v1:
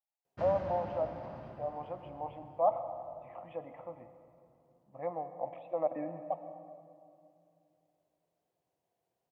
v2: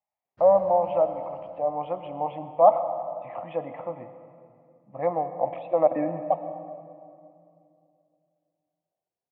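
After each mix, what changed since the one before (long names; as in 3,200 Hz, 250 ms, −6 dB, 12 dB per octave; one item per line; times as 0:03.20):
speech +11.5 dB
background −10.0 dB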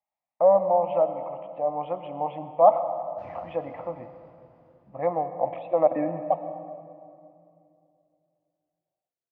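background: entry +2.80 s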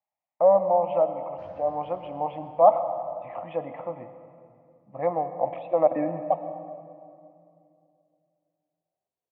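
background: entry −1.80 s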